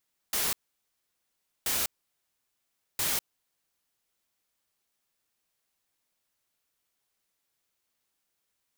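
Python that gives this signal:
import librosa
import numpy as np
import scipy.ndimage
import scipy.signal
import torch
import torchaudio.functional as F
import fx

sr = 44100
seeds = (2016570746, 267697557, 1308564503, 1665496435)

y = fx.noise_burst(sr, seeds[0], colour='white', on_s=0.2, off_s=1.13, bursts=3, level_db=-28.5)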